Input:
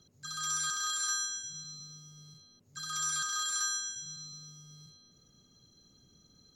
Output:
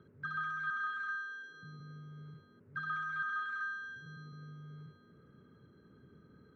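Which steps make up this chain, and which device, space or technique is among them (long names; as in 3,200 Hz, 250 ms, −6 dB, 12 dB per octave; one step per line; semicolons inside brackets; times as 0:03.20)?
0:01.15–0:01.63: high-pass filter 280 Hz 24 dB per octave
bass amplifier (downward compressor 4 to 1, threshold −40 dBFS, peak gain reduction 9.5 dB; loudspeaker in its box 82–2,000 Hz, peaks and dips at 420 Hz +6 dB, 740 Hz −9 dB, 1,500 Hz +8 dB)
level +6 dB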